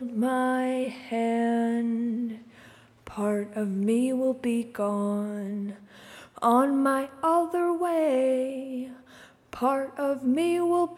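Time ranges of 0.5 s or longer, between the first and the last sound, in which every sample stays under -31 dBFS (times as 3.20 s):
2.32–3.07 s
5.71–6.38 s
8.84–9.53 s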